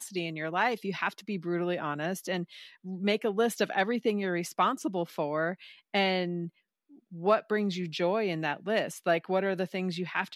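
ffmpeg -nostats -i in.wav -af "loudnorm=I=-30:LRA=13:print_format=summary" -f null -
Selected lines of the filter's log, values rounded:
Input Integrated:    -30.4 LUFS
Input True Peak:     -12.0 dBTP
Input LRA:             1.4 LU
Input Threshold:     -40.6 LUFS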